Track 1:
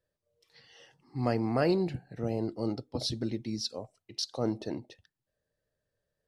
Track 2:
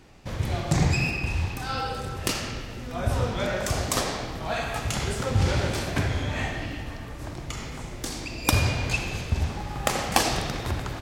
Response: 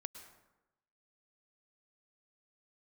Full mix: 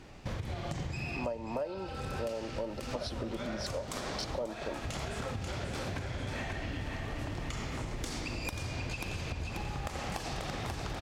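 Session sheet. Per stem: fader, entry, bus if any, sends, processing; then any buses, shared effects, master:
+1.5 dB, 0.00 s, no send, no echo send, Chebyshev high-pass 200 Hz, order 4; small resonant body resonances 580/920/3100 Hz, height 18 dB, ringing for 40 ms
+1.0 dB, 0.00 s, no send, echo send -5.5 dB, treble shelf 10 kHz -9 dB; compression, threshold -30 dBFS, peak gain reduction 13.5 dB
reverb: none
echo: feedback delay 537 ms, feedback 40%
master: compression 12:1, threshold -33 dBFS, peak gain reduction 24 dB

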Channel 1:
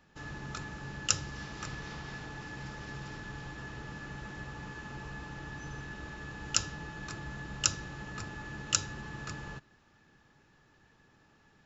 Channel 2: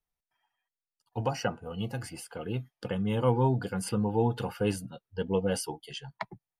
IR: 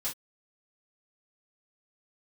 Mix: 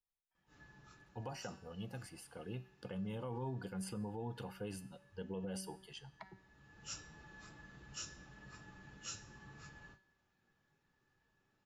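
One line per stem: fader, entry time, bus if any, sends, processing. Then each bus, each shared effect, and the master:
-7.5 dB, 0.35 s, no send, phase randomisation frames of 100 ms; auto duck -12 dB, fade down 1.70 s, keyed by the second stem
-4.0 dB, 0.00 s, no send, none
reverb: none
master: feedback comb 190 Hz, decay 0.67 s, harmonics all, mix 60%; peak limiter -34 dBFS, peak gain reduction 10 dB

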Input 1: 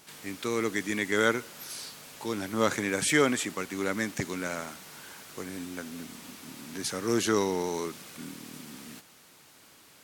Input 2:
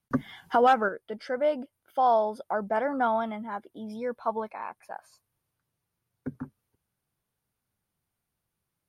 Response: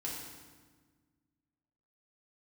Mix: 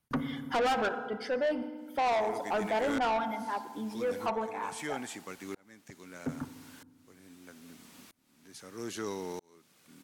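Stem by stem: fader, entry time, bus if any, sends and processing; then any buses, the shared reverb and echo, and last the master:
-7.5 dB, 1.70 s, no send, tremolo saw up 0.78 Hz, depth 100%
+1.0 dB, 0.00 s, send -9 dB, reverb removal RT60 1.2 s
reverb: on, RT60 1.5 s, pre-delay 3 ms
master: saturation -25.5 dBFS, distortion -6 dB

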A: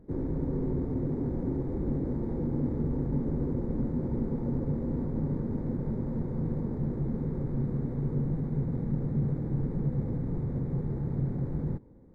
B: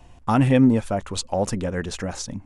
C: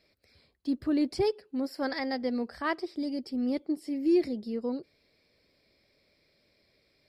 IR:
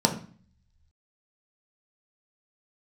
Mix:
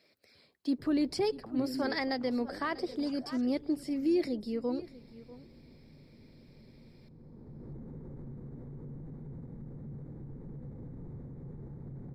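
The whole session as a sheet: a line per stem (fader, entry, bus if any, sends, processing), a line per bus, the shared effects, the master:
-9.5 dB, 0.70 s, no bus, no send, no echo send, peak limiter -28.5 dBFS, peak gain reduction 10 dB; auto duck -11 dB, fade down 1.45 s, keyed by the third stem
-14.5 dB, 1.15 s, bus A, no send, echo send -13 dB, bass shelf 230 Hz +3.5 dB; auto-wah 310–4500 Hz, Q 5.9, down, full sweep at -18.5 dBFS; decay stretcher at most 76 dB/s
+2.5 dB, 0.00 s, bus A, no send, echo send -18.5 dB, harmonic-percussive split harmonic -3 dB
bus A: 0.0 dB, high-pass 150 Hz; peak limiter -22 dBFS, peak gain reduction 7 dB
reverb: none
echo: delay 643 ms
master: none

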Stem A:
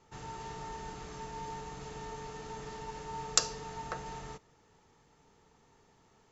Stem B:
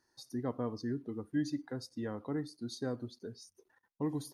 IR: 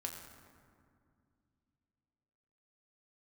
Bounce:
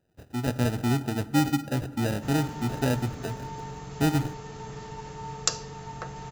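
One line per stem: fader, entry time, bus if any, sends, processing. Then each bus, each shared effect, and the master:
-5.5 dB, 2.10 s, no send, none
-1.0 dB, 0.00 s, send -8.5 dB, sample-rate reducer 1.1 kHz, jitter 0%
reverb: on, RT60 2.2 s, pre-delay 6 ms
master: peaking EQ 120 Hz +8.5 dB 1.2 oct; level rider gain up to 7.5 dB

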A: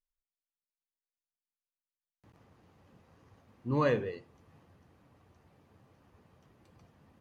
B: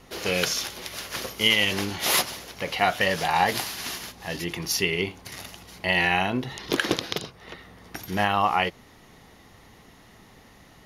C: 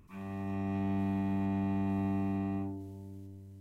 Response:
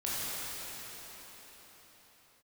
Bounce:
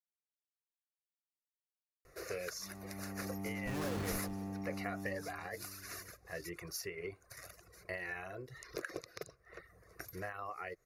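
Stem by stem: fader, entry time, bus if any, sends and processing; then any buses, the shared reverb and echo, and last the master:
-0.5 dB, 0.00 s, no send, echo send -11.5 dB, Schmitt trigger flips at -36.5 dBFS
-8.5 dB, 2.05 s, no send, no echo send, reverb removal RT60 0.75 s; compression 12:1, threshold -27 dBFS, peak gain reduction 12.5 dB; static phaser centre 870 Hz, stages 6
-11.0 dB, 2.50 s, no send, no echo send, low-pass 2 kHz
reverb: none
echo: feedback delay 163 ms, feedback 39%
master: peaking EQ 550 Hz +2 dB 2.6 oct

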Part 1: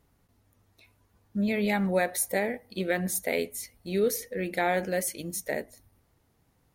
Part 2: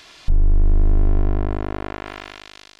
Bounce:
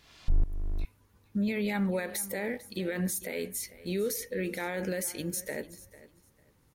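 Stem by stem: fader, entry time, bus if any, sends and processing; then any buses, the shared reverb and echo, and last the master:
+2.0 dB, 0.00 s, no send, echo send -18 dB, peaking EQ 690 Hz -10 dB 0.26 oct; peak limiter -25.5 dBFS, peak gain reduction 11.5 dB
-0.5 dB, 0.00 s, muted 0.85–2.13 s, no send, no echo send, tremolo saw up 2.3 Hz, depth 90%; auto duck -24 dB, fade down 1.30 s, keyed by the first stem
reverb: none
echo: feedback delay 448 ms, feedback 20%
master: none

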